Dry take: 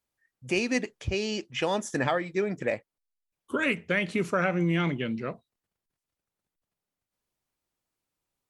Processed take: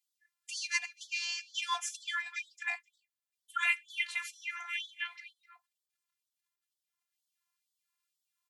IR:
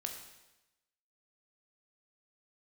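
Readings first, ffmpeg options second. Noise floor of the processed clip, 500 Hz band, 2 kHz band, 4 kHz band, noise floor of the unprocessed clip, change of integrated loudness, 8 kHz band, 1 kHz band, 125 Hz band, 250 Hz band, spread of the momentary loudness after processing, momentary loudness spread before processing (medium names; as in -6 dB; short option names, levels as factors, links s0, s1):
under -85 dBFS, -34.0 dB, -3.0 dB, -0.5 dB, under -85 dBFS, -6.5 dB, +1.0 dB, -7.0 dB, under -40 dB, under -40 dB, 10 LU, 7 LU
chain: -filter_complex "[0:a]afftfilt=real='hypot(re,im)*cos(PI*b)':imag='0':win_size=512:overlap=0.75,asplit=2[s0][s1];[s1]adelay=256.6,volume=0.126,highshelf=f=4000:g=-5.77[s2];[s0][s2]amix=inputs=2:normalize=0,afftfilt=real='re*gte(b*sr/1024,700*pow(3200/700,0.5+0.5*sin(2*PI*2.1*pts/sr)))':imag='im*gte(b*sr/1024,700*pow(3200/700,0.5+0.5*sin(2*PI*2.1*pts/sr)))':win_size=1024:overlap=0.75,volume=1.68"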